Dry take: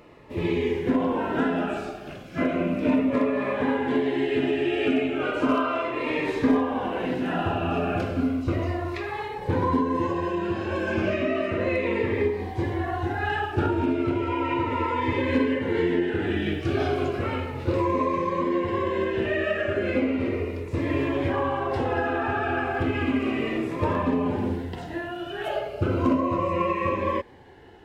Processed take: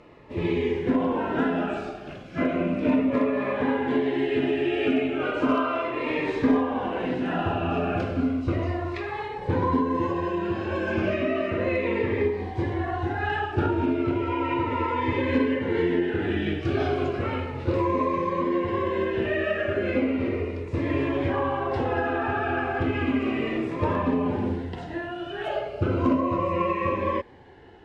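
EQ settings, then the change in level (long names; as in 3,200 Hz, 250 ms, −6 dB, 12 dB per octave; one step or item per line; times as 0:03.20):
high-frequency loss of the air 67 metres
0.0 dB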